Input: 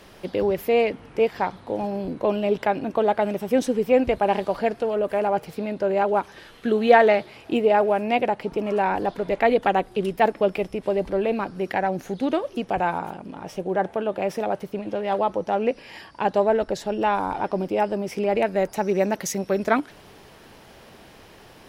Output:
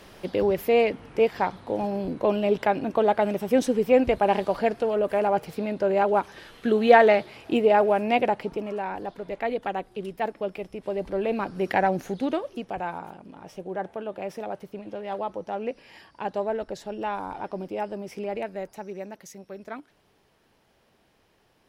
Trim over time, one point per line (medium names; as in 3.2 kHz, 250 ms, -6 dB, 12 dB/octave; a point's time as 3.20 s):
8.36 s -0.5 dB
8.81 s -9 dB
10.62 s -9 dB
11.81 s +2 dB
12.75 s -8 dB
18.22 s -8 dB
19.21 s -17 dB